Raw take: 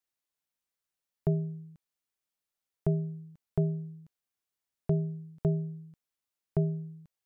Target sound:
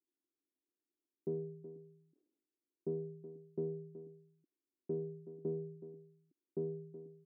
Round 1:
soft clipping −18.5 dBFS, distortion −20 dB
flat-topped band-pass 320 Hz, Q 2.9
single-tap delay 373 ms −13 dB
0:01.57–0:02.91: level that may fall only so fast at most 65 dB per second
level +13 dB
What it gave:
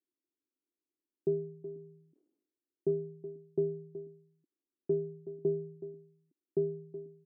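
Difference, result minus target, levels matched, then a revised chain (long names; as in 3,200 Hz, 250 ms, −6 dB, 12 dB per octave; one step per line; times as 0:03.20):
soft clipping: distortion −12 dB
soft clipping −29.5 dBFS, distortion −8 dB
flat-topped band-pass 320 Hz, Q 2.9
single-tap delay 373 ms −13 dB
0:01.57–0:02.91: level that may fall only so fast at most 65 dB per second
level +13 dB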